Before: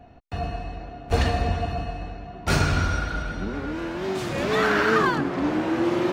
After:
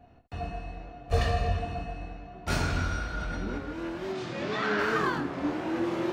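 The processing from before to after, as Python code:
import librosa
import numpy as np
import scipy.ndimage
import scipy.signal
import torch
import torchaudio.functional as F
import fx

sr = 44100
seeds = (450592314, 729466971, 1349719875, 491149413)

y = fx.comb(x, sr, ms=1.7, depth=0.58, at=(1.08, 1.59))
y = fx.cheby1_bandpass(y, sr, low_hz=130.0, high_hz=4900.0, order=2, at=(4.12, 4.79))
y = fx.room_early_taps(y, sr, ms=(24, 75), db=(-5.0, -11.0))
y = fx.env_flatten(y, sr, amount_pct=70, at=(3.14, 3.58))
y = F.gain(torch.from_numpy(y), -8.0).numpy()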